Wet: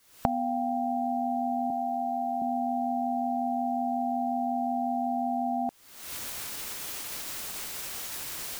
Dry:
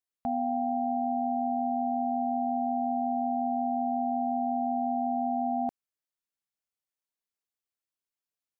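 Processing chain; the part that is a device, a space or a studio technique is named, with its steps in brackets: 1.7–2.42 HPF 290 Hz; cheap recorder with automatic gain (white noise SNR 34 dB; recorder AGC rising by 65 dB/s)

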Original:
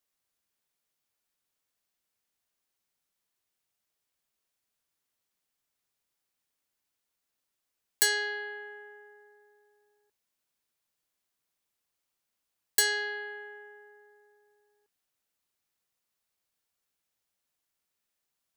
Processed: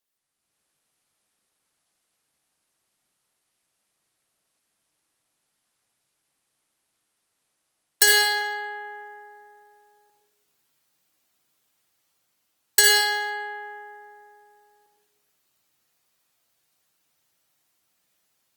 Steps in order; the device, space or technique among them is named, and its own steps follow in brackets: far-field microphone of a smart speaker (reverb RT60 0.80 s, pre-delay 51 ms, DRR 0 dB; HPF 84 Hz 12 dB/oct; AGC gain up to 9 dB; Opus 24 kbps 48000 Hz)

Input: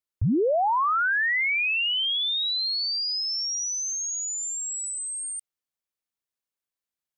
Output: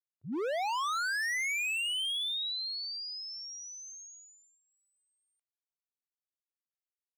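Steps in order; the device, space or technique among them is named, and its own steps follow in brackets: walkie-talkie (BPF 520–2500 Hz; hard clip -31.5 dBFS, distortion -7 dB; gate -49 dBFS, range -25 dB)

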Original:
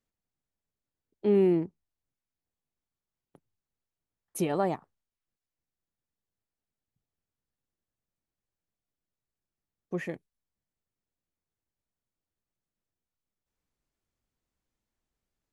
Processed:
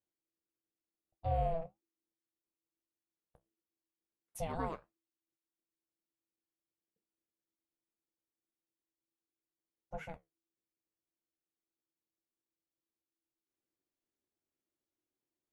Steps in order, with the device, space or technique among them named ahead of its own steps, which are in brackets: alien voice (ring modulator 330 Hz; flange 1.6 Hz, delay 9 ms, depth 7.3 ms, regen -60%); gain -3 dB

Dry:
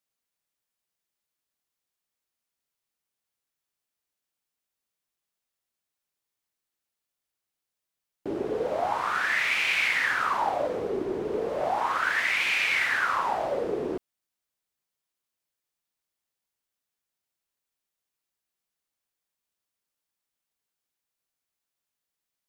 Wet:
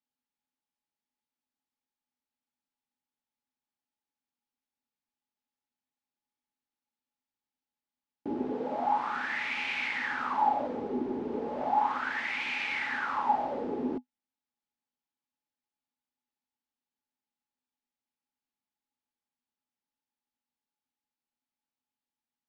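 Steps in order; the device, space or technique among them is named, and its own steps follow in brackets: 8.52–9.14 HPF 110 Hz; inside a cardboard box (LPF 4900 Hz 12 dB/oct; small resonant body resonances 250/840 Hz, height 18 dB, ringing for 90 ms); gain -8 dB

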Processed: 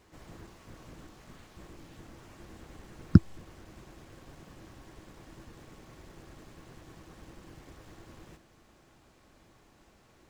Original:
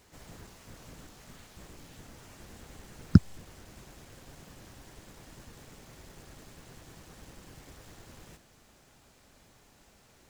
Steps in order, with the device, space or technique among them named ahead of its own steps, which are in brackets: inside a helmet (high shelf 4400 Hz -9 dB; small resonant body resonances 330/1100 Hz, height 8 dB, ringing for 90 ms)

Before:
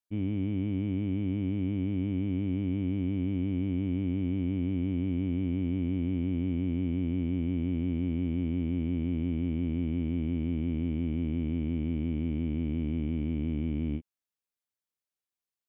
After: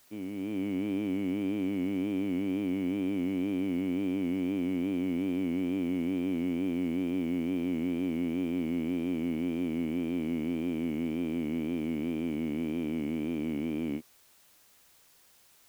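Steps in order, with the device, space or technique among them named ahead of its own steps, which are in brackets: dictaphone (BPF 350–3100 Hz; AGC gain up to 7 dB; wow and flutter; white noise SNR 30 dB)

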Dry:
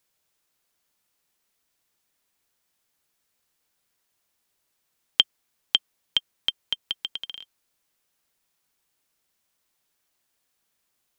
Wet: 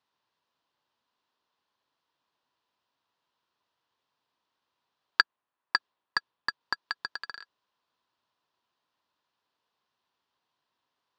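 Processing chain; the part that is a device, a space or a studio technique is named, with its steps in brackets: 5.21–6.61 low-pass opened by the level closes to 990 Hz, open at -22 dBFS; ring modulator pedal into a guitar cabinet (polarity switched at an audio rate 1500 Hz; speaker cabinet 110–4400 Hz, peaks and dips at 180 Hz -4 dB, 1000 Hz +10 dB, 2200 Hz -7 dB); gain -1.5 dB

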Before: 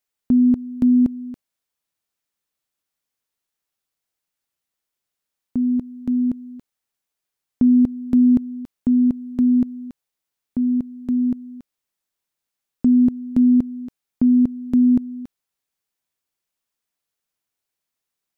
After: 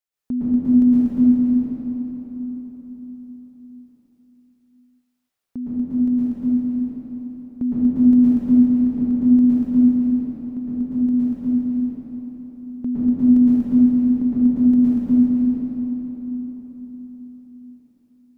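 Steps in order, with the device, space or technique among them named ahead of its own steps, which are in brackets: cathedral (reverb RT60 4.7 s, pre-delay 0.106 s, DRR -11.5 dB); gain -8.5 dB

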